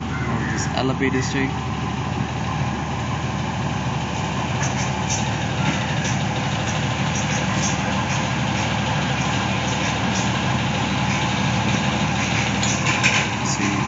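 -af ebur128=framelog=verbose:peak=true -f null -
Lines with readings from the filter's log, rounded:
Integrated loudness:
  I:         -21.5 LUFS
  Threshold: -31.5 LUFS
Loudness range:
  LRA:         4.0 LU
  Threshold: -41.7 LUFS
  LRA low:   -23.8 LUFS
  LRA high:  -19.8 LUFS
True peak:
  Peak:       -3.4 dBFS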